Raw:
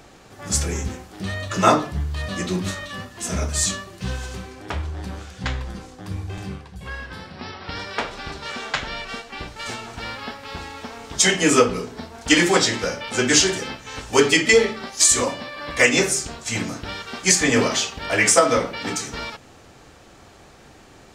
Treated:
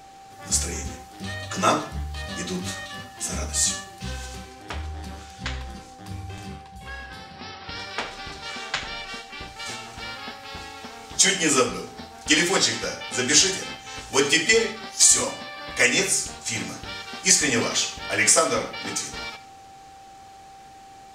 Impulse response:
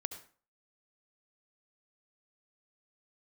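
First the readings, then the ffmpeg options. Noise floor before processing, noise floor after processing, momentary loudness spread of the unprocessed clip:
-48 dBFS, -46 dBFS, 18 LU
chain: -filter_complex "[0:a]aeval=exprs='val(0)+0.0112*sin(2*PI*780*n/s)':c=same,asplit=2[s0][s1];[s1]tiltshelf=f=1200:g=-9[s2];[1:a]atrim=start_sample=2205[s3];[s2][s3]afir=irnorm=-1:irlink=0,volume=0.631[s4];[s0][s4]amix=inputs=2:normalize=0,volume=0.422"

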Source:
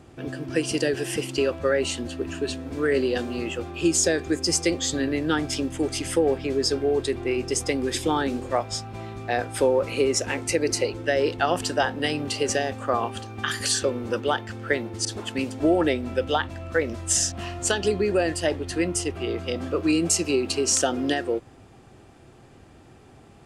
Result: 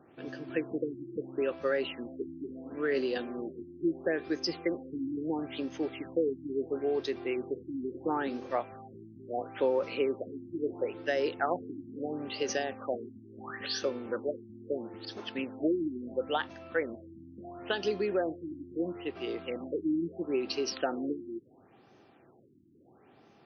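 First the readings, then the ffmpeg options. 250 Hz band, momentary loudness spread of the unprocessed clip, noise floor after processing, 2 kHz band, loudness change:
-8.0 dB, 8 LU, -61 dBFS, -10.5 dB, -9.0 dB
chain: -af "highpass=200,afftfilt=real='re*lt(b*sr/1024,350*pow(6600/350,0.5+0.5*sin(2*PI*0.74*pts/sr)))':imag='im*lt(b*sr/1024,350*pow(6600/350,0.5+0.5*sin(2*PI*0.74*pts/sr)))':win_size=1024:overlap=0.75,volume=0.447"

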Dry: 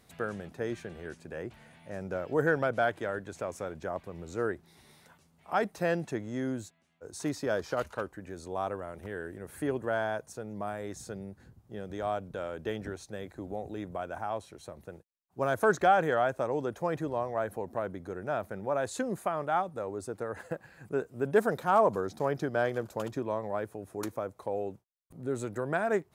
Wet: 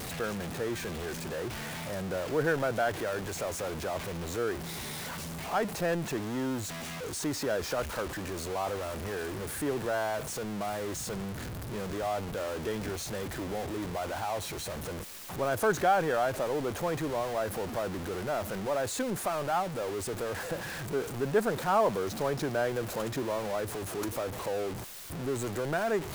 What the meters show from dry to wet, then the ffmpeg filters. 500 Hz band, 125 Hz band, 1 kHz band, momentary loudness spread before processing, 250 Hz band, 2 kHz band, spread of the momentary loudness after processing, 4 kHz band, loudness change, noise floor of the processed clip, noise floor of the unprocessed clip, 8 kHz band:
0.0 dB, +3.0 dB, -0.5 dB, 14 LU, +1.5 dB, 0.0 dB, 8 LU, +9.0 dB, 0.0 dB, -39 dBFS, -65 dBFS, +10.0 dB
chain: -af "aeval=exprs='val(0)+0.5*0.0316*sgn(val(0))':c=same,volume=0.708"

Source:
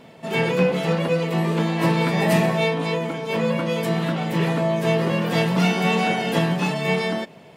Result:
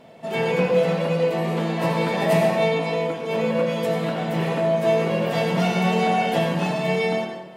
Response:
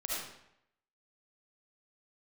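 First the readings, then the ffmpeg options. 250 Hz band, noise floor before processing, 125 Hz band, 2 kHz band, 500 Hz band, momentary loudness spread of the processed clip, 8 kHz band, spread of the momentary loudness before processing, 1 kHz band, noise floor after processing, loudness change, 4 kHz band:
-2.5 dB, -46 dBFS, -3.0 dB, -2.5 dB, +2.0 dB, 5 LU, -3.0 dB, 5 LU, +1.0 dB, -38 dBFS, -0.5 dB, -2.5 dB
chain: -filter_complex "[0:a]equalizer=f=660:w=2.4:g=7,asplit=2[s0][s1];[1:a]atrim=start_sample=2205,asetrate=33957,aresample=44100[s2];[s1][s2]afir=irnorm=-1:irlink=0,volume=0.631[s3];[s0][s3]amix=inputs=2:normalize=0,volume=0.398"

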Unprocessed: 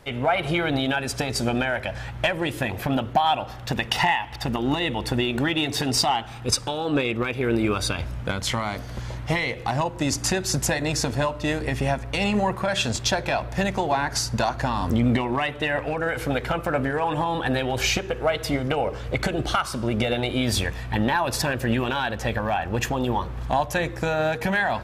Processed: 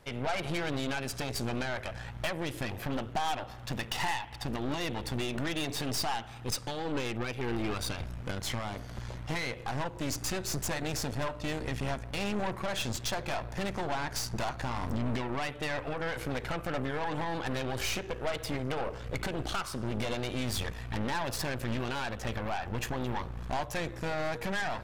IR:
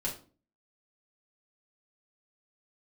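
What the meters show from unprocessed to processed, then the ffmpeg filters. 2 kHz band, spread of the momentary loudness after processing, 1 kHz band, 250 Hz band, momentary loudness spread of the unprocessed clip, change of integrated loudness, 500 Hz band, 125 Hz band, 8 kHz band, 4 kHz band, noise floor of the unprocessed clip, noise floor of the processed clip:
-10.0 dB, 3 LU, -10.5 dB, -10.0 dB, 4 LU, -10.0 dB, -10.0 dB, -9.0 dB, -9.0 dB, -9.5 dB, -36 dBFS, -44 dBFS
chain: -af "aeval=exprs='0.447*(cos(1*acos(clip(val(0)/0.447,-1,1)))-cos(1*PI/2))+0.0708*(cos(8*acos(clip(val(0)/0.447,-1,1)))-cos(8*PI/2))':c=same,asoftclip=type=tanh:threshold=0.158,volume=0.398"

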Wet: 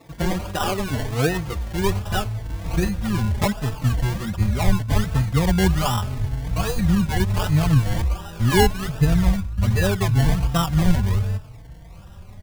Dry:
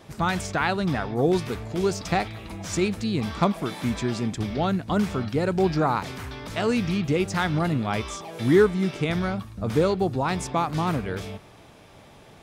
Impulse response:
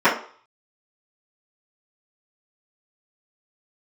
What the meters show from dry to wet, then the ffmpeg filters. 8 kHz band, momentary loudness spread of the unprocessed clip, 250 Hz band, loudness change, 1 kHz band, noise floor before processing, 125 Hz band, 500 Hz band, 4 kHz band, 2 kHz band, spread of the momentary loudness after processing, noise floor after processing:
+5.0 dB, 8 LU, +1.5 dB, +3.5 dB, 0.0 dB, -50 dBFS, +8.5 dB, -2.5 dB, +4.5 dB, +1.5 dB, 7 LU, -41 dBFS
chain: -filter_complex "[0:a]acrusher=samples=28:mix=1:aa=0.000001:lfo=1:lforange=16.8:lforate=1.3,asubboost=boost=10:cutoff=100,asplit=2[s0][s1];[s1]adelay=4,afreqshift=0.77[s2];[s0][s2]amix=inputs=2:normalize=1,volume=1.5"

